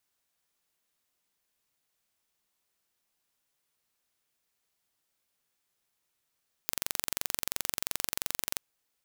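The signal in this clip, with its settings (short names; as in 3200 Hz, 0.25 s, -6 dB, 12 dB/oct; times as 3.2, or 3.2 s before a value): pulse train 22.9/s, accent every 0, -3 dBFS 1.89 s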